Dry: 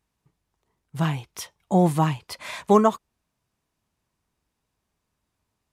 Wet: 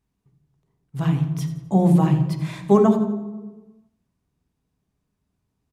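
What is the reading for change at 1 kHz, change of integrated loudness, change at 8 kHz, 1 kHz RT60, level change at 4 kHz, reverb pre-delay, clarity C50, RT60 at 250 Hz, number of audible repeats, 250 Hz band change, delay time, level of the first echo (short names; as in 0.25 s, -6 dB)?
-3.5 dB, +2.5 dB, n/a, 1.1 s, -5.0 dB, 3 ms, 8.0 dB, 1.5 s, 2, +5.5 dB, 86 ms, -13.0 dB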